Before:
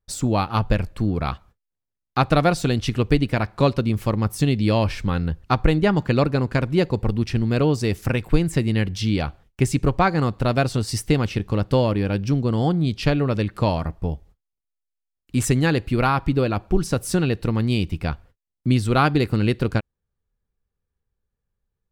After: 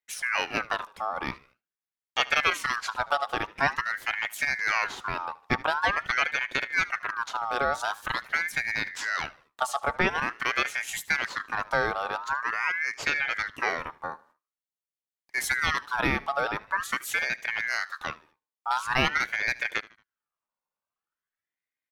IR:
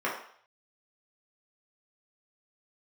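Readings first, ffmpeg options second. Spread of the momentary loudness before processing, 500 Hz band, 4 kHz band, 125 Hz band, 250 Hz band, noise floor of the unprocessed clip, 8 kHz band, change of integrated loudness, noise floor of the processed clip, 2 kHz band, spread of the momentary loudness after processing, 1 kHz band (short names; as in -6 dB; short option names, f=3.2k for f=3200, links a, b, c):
6 LU, -12.0 dB, -1.5 dB, -24.0 dB, -19.5 dB, -82 dBFS, -4.0 dB, -6.0 dB, under -85 dBFS, +5.5 dB, 8 LU, -2.5 dB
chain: -filter_complex "[0:a]highpass=f=220:p=1,asplit=2[a][b];[b]aecho=0:1:76|152|228:0.0891|0.0365|0.015[c];[a][c]amix=inputs=2:normalize=0,aeval=exprs='val(0)*sin(2*PI*1500*n/s+1500*0.35/0.46*sin(2*PI*0.46*n/s))':c=same,volume=-2.5dB"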